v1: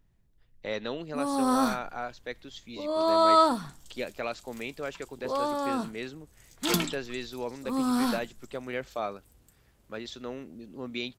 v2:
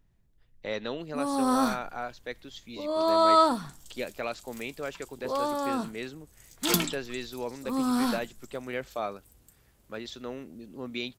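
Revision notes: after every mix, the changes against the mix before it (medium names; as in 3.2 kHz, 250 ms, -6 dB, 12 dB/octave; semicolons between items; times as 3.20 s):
second sound: add treble shelf 7 kHz +6.5 dB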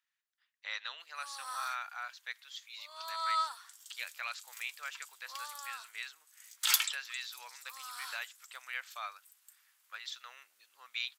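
first sound -8.0 dB; master: add high-pass 1.2 kHz 24 dB/octave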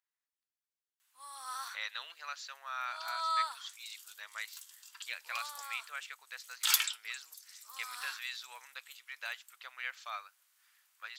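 speech: entry +1.10 s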